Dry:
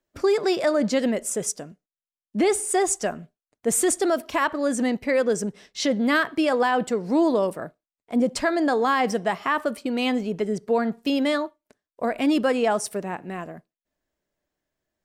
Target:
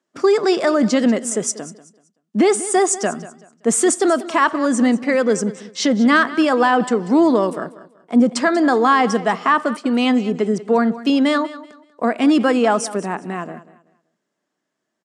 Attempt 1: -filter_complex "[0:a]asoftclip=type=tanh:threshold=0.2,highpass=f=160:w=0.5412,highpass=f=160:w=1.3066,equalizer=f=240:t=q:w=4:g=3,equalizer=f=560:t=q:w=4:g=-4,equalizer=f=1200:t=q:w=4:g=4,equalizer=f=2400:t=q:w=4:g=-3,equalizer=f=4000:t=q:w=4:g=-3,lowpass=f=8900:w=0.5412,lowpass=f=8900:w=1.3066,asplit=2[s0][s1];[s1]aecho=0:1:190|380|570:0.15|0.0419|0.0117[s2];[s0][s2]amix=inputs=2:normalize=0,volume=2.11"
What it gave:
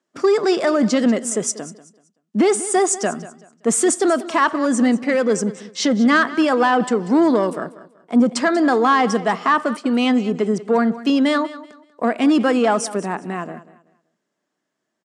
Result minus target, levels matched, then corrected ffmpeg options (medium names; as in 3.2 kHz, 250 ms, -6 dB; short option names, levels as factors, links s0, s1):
saturation: distortion +11 dB
-filter_complex "[0:a]asoftclip=type=tanh:threshold=0.422,highpass=f=160:w=0.5412,highpass=f=160:w=1.3066,equalizer=f=240:t=q:w=4:g=3,equalizer=f=560:t=q:w=4:g=-4,equalizer=f=1200:t=q:w=4:g=4,equalizer=f=2400:t=q:w=4:g=-3,equalizer=f=4000:t=q:w=4:g=-3,lowpass=f=8900:w=0.5412,lowpass=f=8900:w=1.3066,asplit=2[s0][s1];[s1]aecho=0:1:190|380|570:0.15|0.0419|0.0117[s2];[s0][s2]amix=inputs=2:normalize=0,volume=2.11"